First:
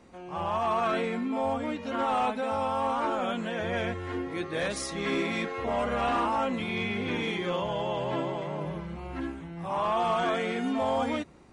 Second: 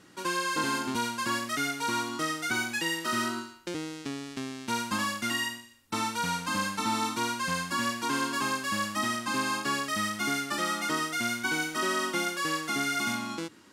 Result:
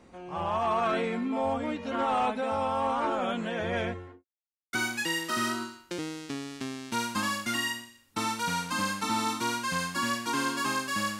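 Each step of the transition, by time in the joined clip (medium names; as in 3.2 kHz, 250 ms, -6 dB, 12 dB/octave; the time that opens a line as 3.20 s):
first
3.79–4.25 s: studio fade out
4.25–4.73 s: mute
4.73 s: go over to second from 2.49 s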